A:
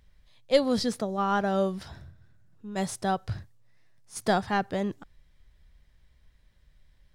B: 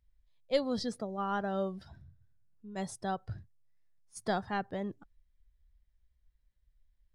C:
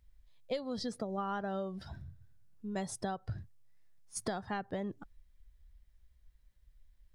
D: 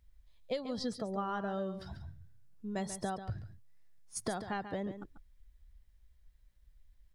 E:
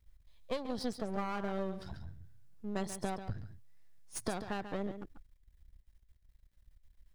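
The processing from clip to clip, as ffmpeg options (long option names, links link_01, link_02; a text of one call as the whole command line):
ffmpeg -i in.wav -af "afftdn=noise_reduction=13:noise_floor=-44,volume=-7.5dB" out.wav
ffmpeg -i in.wav -af "acompressor=threshold=-40dB:ratio=16,volume=7dB" out.wav
ffmpeg -i in.wav -af "aecho=1:1:140:0.299" out.wav
ffmpeg -i in.wav -af "aeval=exprs='if(lt(val(0),0),0.251*val(0),val(0))':channel_layout=same,volume=2.5dB" out.wav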